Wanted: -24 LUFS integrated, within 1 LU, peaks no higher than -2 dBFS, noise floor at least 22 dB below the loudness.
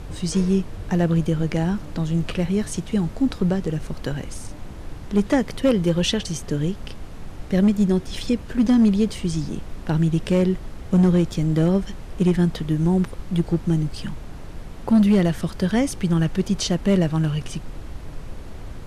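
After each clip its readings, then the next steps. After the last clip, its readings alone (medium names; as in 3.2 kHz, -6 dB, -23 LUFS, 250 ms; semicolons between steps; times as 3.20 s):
clipped samples 0.6%; clipping level -11.0 dBFS; noise floor -36 dBFS; noise floor target -44 dBFS; loudness -22.0 LUFS; peak level -11.0 dBFS; loudness target -24.0 LUFS
-> clip repair -11 dBFS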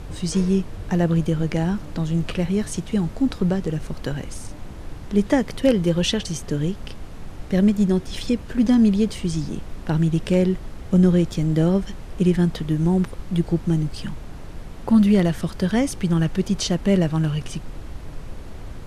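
clipped samples 0.0%; noise floor -36 dBFS; noise floor target -44 dBFS
-> noise print and reduce 8 dB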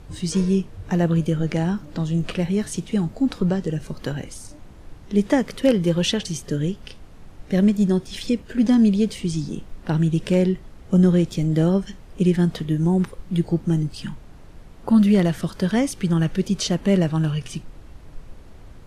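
noise floor -43 dBFS; noise floor target -44 dBFS
-> noise print and reduce 6 dB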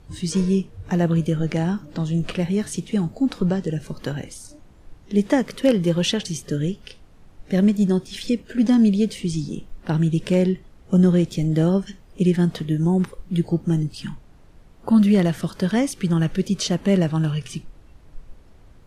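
noise floor -49 dBFS; loudness -21.5 LUFS; peak level -6.5 dBFS; loudness target -24.0 LUFS
-> trim -2.5 dB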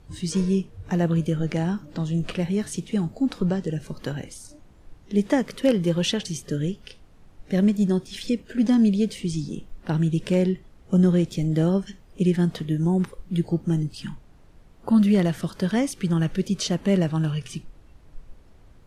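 loudness -24.0 LUFS; peak level -9.0 dBFS; noise floor -51 dBFS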